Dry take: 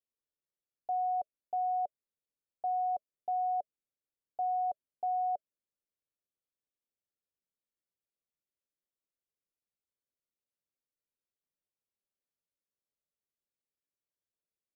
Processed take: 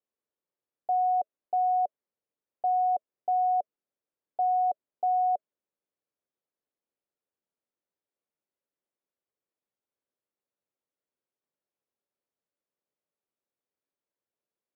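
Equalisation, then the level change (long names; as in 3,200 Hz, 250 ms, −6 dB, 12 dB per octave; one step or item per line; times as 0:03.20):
resonant band-pass 490 Hz, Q 0.58
+7.5 dB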